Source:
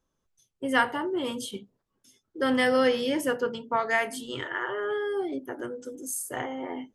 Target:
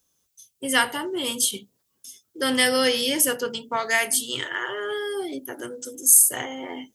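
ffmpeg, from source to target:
-filter_complex "[0:a]highpass=50,acrossover=split=1600[s0][s1];[s1]crystalizer=i=7:c=0[s2];[s0][s2]amix=inputs=2:normalize=0"

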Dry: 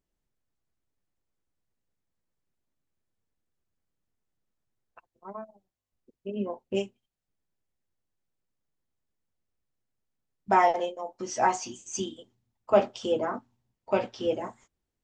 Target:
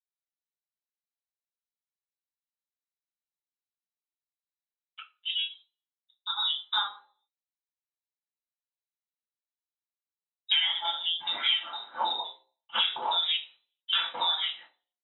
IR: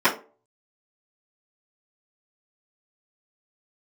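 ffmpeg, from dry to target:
-filter_complex "[0:a]agate=range=0.0224:threshold=0.00398:ratio=3:detection=peak,lowpass=f=3400:t=q:w=0.5098,lowpass=f=3400:t=q:w=0.6013,lowpass=f=3400:t=q:w=0.9,lowpass=f=3400:t=q:w=2.563,afreqshift=-4000,asettb=1/sr,asplit=3[s0][s1][s2];[s0]atrim=end=10.784[s3];[s1]atrim=start=10.78:end=13.36,asetpts=PTS-STARTPTS,afade=t=in:d=0.004:c=qsin,afade=t=out:st=2.576:d=0.004:c=qsin,acrossover=split=1500[s4][s5];[s5]adelay=60[s6];[s4][s6]amix=inputs=2:normalize=0,atrim=end_sample=113778[s7];[s2]atrim=start=13.356[s8];[s3][s7]acrossfade=d=0.004:c1=hsin:c2=qsin[s9];[s9][s8]acrossfade=d=0.004:c1=qsin:c2=hsin[s10];[1:a]atrim=start_sample=2205,asetrate=39690,aresample=44100[s11];[s10][s11]afir=irnorm=-1:irlink=0,acompressor=threshold=0.0708:ratio=6,volume=0.794"

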